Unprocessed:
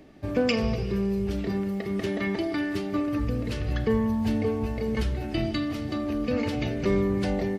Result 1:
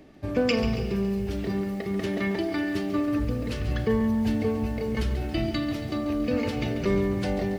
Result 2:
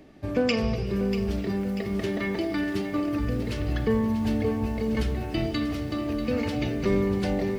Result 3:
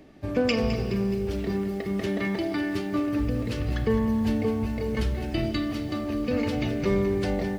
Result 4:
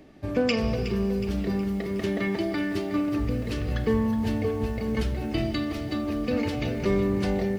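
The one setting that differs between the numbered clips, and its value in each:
lo-fi delay, time: 0.139, 0.64, 0.211, 0.367 s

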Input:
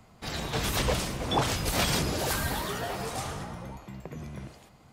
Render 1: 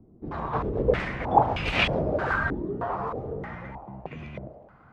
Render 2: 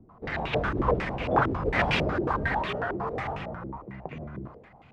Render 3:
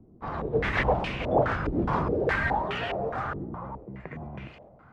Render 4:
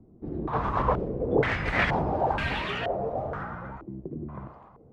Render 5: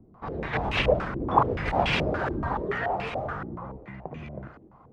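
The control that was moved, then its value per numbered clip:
stepped low-pass, rate: 3.2, 11, 4.8, 2.1, 7 Hz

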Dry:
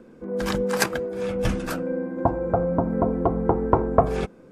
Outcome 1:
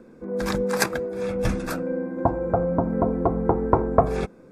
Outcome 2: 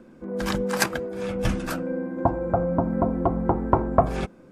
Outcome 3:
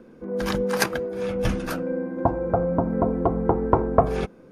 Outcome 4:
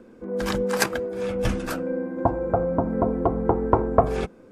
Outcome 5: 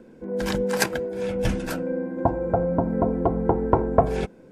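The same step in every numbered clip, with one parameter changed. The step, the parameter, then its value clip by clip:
notch, frequency: 3000, 450, 7700, 160, 1200 Hz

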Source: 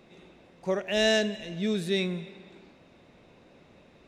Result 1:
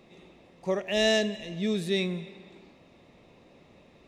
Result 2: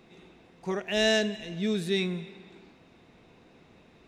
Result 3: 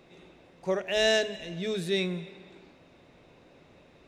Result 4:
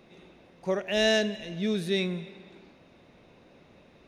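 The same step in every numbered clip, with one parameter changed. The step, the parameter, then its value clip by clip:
notch, frequency: 1500, 570, 210, 7600 Hz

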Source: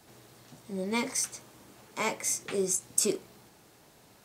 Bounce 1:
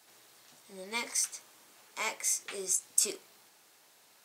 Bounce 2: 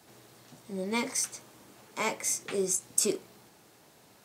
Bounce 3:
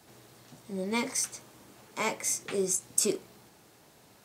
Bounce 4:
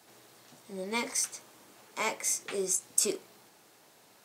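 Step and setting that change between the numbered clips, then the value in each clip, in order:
HPF, cutoff: 1400, 110, 43, 410 Hz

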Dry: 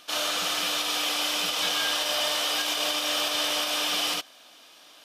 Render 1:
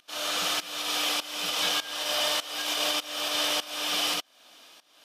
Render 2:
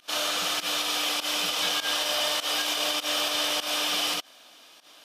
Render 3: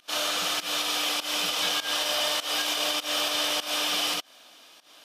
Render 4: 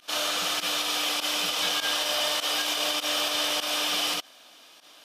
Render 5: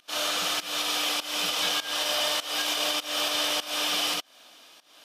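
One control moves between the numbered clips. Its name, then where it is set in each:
pump, release: 531, 105, 170, 63, 273 ms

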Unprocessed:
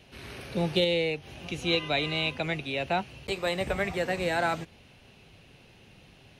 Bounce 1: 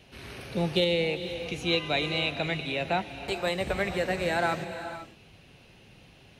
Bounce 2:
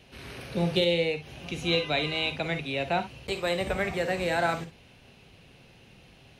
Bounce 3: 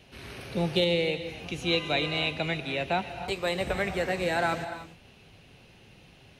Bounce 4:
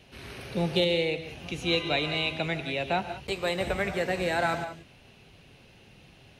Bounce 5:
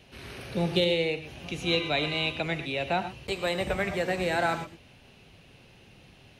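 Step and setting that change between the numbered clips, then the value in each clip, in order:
non-linear reverb, gate: 520, 80, 330, 210, 140 ms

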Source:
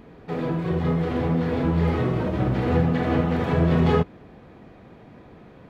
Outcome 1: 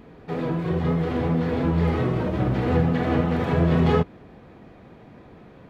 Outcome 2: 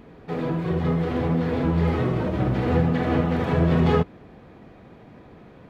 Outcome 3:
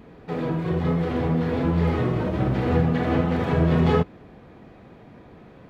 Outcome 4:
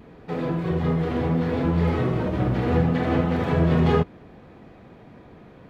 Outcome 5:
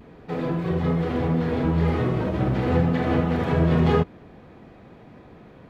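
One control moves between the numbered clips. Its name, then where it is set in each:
vibrato, rate: 5.6, 13, 1.3, 0.7, 0.46 Hz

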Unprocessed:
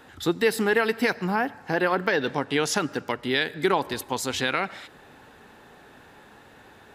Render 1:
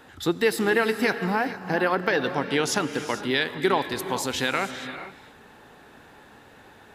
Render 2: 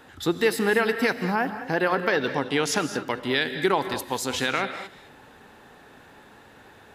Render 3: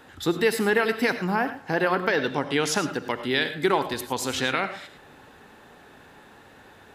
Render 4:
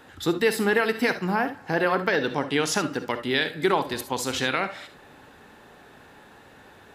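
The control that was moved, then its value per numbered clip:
non-linear reverb, gate: 480, 240, 130, 90 ms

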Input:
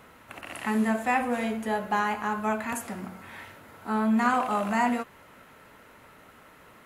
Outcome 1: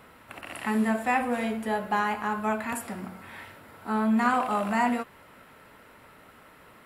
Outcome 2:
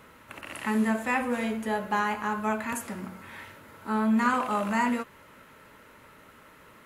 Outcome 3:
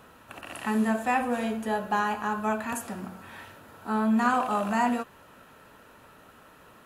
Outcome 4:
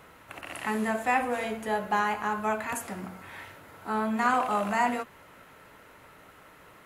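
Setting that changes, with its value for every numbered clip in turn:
notch, frequency: 6400, 730, 2100, 230 Hz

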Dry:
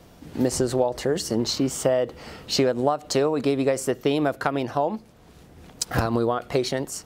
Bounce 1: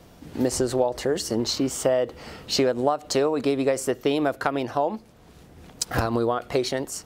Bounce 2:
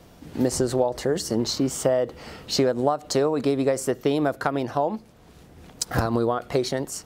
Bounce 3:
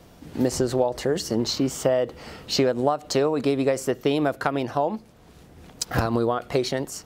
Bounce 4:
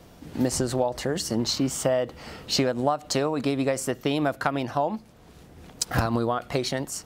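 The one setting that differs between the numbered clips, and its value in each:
dynamic EQ, frequency: 160, 2700, 9100, 420 Hz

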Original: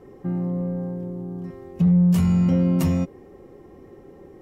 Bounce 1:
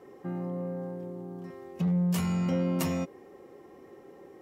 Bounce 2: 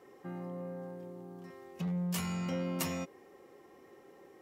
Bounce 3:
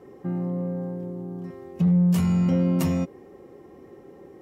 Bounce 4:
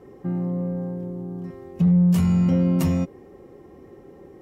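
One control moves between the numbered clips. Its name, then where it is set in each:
HPF, cutoff: 530, 1400, 160, 46 Hz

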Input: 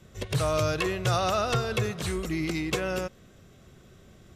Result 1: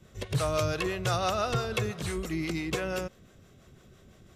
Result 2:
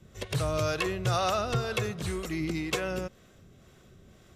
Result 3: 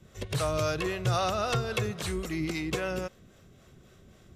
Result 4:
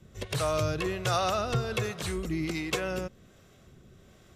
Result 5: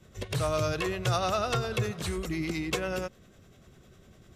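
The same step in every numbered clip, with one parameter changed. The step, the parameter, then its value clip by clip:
harmonic tremolo, rate: 5.9, 2, 3.7, 1.3, 10 Hz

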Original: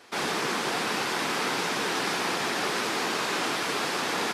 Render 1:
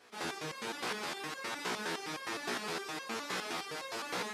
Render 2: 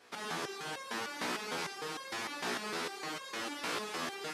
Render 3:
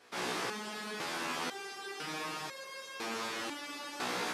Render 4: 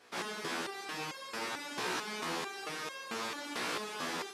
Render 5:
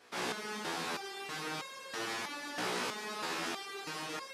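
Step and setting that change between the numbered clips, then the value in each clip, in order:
stepped resonator, rate: 9.7, 6.6, 2, 4.5, 3.1 Hz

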